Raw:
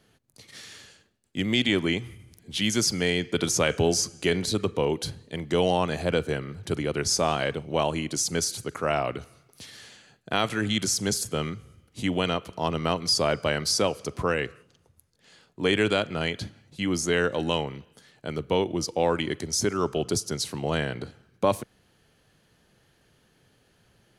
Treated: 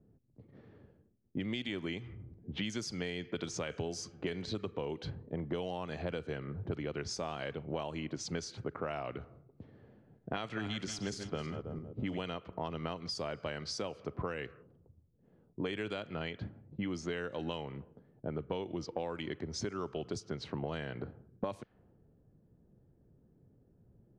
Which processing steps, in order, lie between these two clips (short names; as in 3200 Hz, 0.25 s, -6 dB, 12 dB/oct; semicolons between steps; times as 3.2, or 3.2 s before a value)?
9.71–12.21 regenerating reverse delay 0.16 s, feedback 53%, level -10 dB; low-pass opened by the level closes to 340 Hz, open at -20 dBFS; compressor 12:1, threshold -35 dBFS, peak gain reduction 19 dB; air absorption 78 m; gain +1.5 dB